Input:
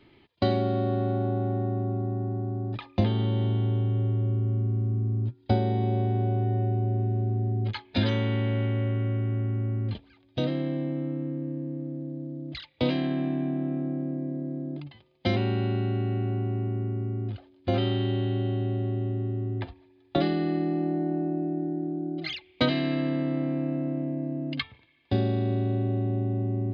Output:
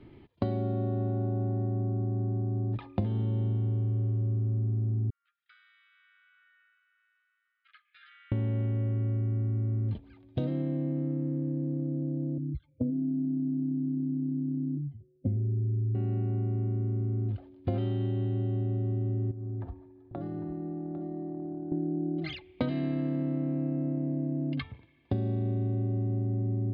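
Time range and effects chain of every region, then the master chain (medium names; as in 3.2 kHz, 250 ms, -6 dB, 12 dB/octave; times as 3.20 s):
5.10–8.32 s: Chebyshev high-pass 1.2 kHz, order 10 + compression 2:1, threshold -54 dBFS + distance through air 320 m
12.38–15.95 s: spectral contrast enhancement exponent 2.1 + boxcar filter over 46 samples + comb of notches 170 Hz
19.31–21.72 s: resonant high shelf 1.8 kHz -9 dB, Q 1.5 + compression, threshold -40 dBFS + delay 801 ms -11.5 dB
whole clip: low-pass 1.7 kHz 6 dB/octave; bass shelf 370 Hz +9.5 dB; compression 5:1, threshold -28 dBFS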